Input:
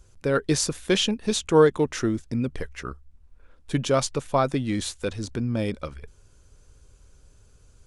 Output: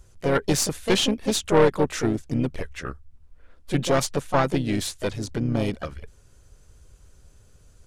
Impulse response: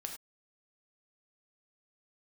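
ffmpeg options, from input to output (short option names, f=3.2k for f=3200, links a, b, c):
-filter_complex "[0:a]asplit=2[a][b];[b]asetrate=55563,aresample=44100,atempo=0.793701,volume=-7dB[c];[a][c]amix=inputs=2:normalize=0,aeval=exprs='(tanh(5.62*val(0)+0.6)-tanh(0.6))/5.62':c=same,volume=3.5dB"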